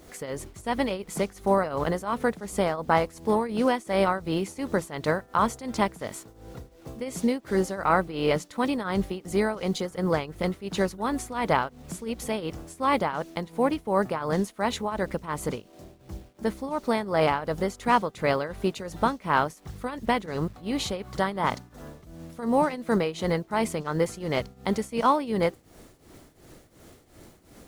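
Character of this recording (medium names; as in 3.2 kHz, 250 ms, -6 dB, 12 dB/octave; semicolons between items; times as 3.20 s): a quantiser's noise floor 10-bit, dither none; tremolo triangle 2.8 Hz, depth 85%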